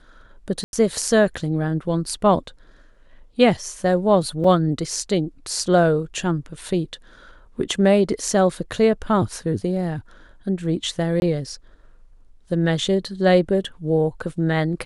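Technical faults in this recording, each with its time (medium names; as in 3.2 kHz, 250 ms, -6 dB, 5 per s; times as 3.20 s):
0.64–0.73 s: dropout 91 ms
4.44 s: dropout 3.8 ms
11.20–11.22 s: dropout 21 ms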